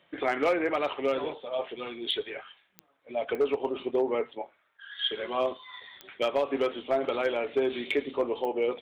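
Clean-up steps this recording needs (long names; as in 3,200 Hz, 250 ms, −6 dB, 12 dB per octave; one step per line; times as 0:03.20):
clipped peaks rebuilt −18.5 dBFS
click removal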